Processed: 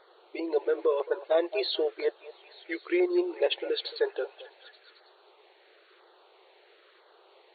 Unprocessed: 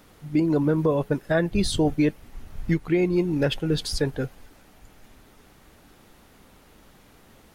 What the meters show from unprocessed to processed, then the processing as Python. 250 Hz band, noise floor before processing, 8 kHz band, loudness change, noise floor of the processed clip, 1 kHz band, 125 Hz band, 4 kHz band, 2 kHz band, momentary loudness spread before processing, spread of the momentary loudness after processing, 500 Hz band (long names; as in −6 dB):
−10.5 dB, −54 dBFS, below −40 dB, −5.0 dB, −61 dBFS, −3.5 dB, below −40 dB, −1.5 dB, −4.5 dB, 6 LU, 12 LU, −1.5 dB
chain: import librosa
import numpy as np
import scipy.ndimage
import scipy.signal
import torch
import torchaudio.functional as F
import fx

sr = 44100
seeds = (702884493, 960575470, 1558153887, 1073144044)

y = fx.filter_lfo_notch(x, sr, shape='saw_down', hz=1.0, low_hz=680.0, high_hz=2700.0, q=1.4)
y = fx.brickwall_bandpass(y, sr, low_hz=340.0, high_hz=4500.0)
y = fx.echo_stepped(y, sr, ms=220, hz=730.0, octaves=0.7, feedback_pct=70, wet_db=-11.0)